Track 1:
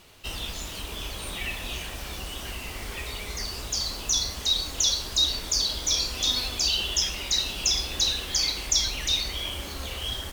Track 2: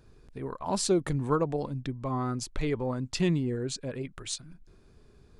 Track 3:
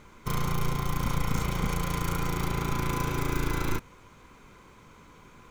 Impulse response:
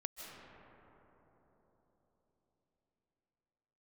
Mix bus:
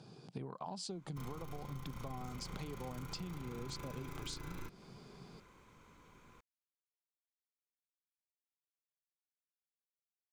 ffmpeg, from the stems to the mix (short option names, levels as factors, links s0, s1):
-filter_complex "[1:a]volume=1.33[s0];[2:a]adelay=900,volume=0.335[s1];[s0]highpass=f=130:w=0.5412,highpass=f=130:w=1.3066,equalizer=f=130:t=q:w=4:g=6,equalizer=f=180:t=q:w=4:g=9,equalizer=f=770:t=q:w=4:g=9,equalizer=f=1800:t=q:w=4:g=-7,equalizer=f=3200:t=q:w=4:g=5,equalizer=f=4800:t=q:w=4:g=9,lowpass=f=9800:w=0.5412,lowpass=f=9800:w=1.3066,acompressor=threshold=0.0251:ratio=6,volume=1[s2];[s1][s2]amix=inputs=2:normalize=0,acompressor=threshold=0.00794:ratio=5"